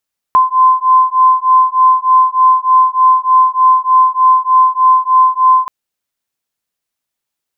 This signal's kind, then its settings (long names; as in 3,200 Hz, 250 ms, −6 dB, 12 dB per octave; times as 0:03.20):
two tones that beat 1,030 Hz, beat 3.3 Hz, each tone −9.5 dBFS 5.33 s